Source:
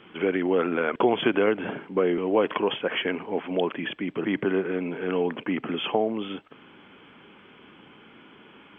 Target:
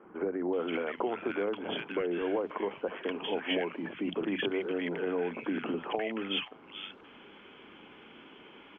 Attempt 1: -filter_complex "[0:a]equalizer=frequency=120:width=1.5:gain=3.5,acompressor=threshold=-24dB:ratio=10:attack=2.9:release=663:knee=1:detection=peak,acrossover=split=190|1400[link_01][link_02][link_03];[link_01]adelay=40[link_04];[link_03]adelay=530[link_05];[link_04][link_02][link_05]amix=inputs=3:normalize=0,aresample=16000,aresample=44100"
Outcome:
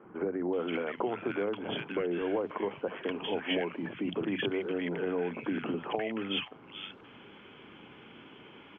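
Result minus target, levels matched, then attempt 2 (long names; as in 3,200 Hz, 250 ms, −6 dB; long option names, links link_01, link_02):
125 Hz band +4.0 dB
-filter_complex "[0:a]equalizer=frequency=120:width=1.5:gain=-7,acompressor=threshold=-24dB:ratio=10:attack=2.9:release=663:knee=1:detection=peak,acrossover=split=190|1400[link_01][link_02][link_03];[link_01]adelay=40[link_04];[link_03]adelay=530[link_05];[link_04][link_02][link_05]amix=inputs=3:normalize=0,aresample=16000,aresample=44100"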